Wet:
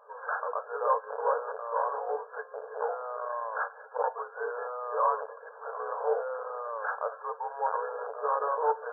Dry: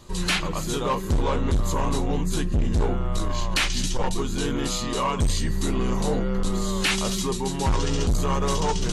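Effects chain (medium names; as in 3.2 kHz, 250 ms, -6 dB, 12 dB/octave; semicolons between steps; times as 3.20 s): FFT band-pass 430–1700 Hz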